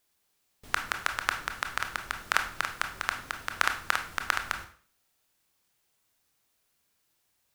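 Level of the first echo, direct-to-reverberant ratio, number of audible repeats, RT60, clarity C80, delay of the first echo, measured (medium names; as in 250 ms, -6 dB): no echo, 5.0 dB, no echo, 0.45 s, 13.5 dB, no echo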